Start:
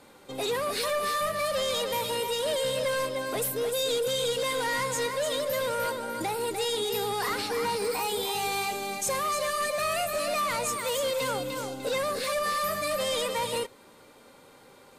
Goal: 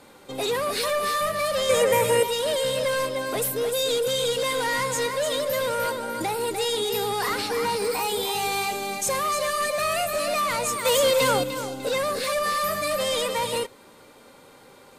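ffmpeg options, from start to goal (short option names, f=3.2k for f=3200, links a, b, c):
-filter_complex "[0:a]asettb=1/sr,asplit=3[a][b][c];[a]atrim=end=1.694[d];[b]atrim=start=1.69:end=2.23,asetpts=PTS-STARTPTS,afade=t=in:d=0.004:c=qsin,afade=t=out:st=0.536:d=0.004:c=qsin,equalizer=f=125:t=o:w=1:g=9,equalizer=f=500:t=o:w=1:g=8,equalizer=f=2k:t=o:w=1:g=10,equalizer=f=4k:t=o:w=1:g=-10,equalizer=f=8k:t=o:w=1:g=8[e];[c]atrim=start=2.226[f];[d][e]acrossfade=d=0.004:c1=hsin:c2=qsin[g];[g][f]acrossfade=d=0.004:c1=qsin:c2=hsin,asettb=1/sr,asplit=3[h][i][j];[h]atrim=end=10.854[k];[i]atrim=start=10.85:end=11.44,asetpts=PTS-STARTPTS,afade=t=in:d=0.004:c=qsin,afade=t=out:st=0.586:d=0.004:c=qsin,acontrast=30[l];[j]atrim=start=11.436[m];[k][l]acrossfade=d=0.004:c1=hsin:c2=qsin[n];[n][m]acrossfade=d=0.004:c1=qsin:c2=hsin,volume=3.5dB"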